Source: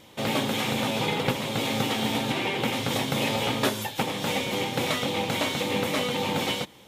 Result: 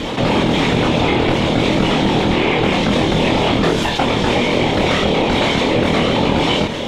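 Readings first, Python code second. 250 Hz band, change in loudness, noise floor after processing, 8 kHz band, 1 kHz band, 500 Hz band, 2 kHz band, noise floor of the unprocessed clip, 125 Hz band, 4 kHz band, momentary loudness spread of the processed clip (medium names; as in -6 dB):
+13.0 dB, +11.0 dB, -22 dBFS, +2.5 dB, +11.0 dB, +12.5 dB, +9.5 dB, -51 dBFS, +13.0 dB, +8.5 dB, 1 LU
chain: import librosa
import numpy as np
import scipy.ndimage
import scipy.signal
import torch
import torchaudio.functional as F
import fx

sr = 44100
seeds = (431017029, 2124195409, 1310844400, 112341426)

y = fx.highpass(x, sr, hz=250.0, slope=6)
y = fx.low_shelf(y, sr, hz=320.0, db=11.0)
y = fx.whisperise(y, sr, seeds[0])
y = np.clip(y, -10.0 ** (-15.0 / 20.0), 10.0 ** (-15.0 / 20.0))
y = fx.air_absorb(y, sr, metres=100.0)
y = fx.doubler(y, sr, ms=25.0, db=-3.5)
y = fx.env_flatten(y, sr, amount_pct=70)
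y = y * 10.0 ** (5.0 / 20.0)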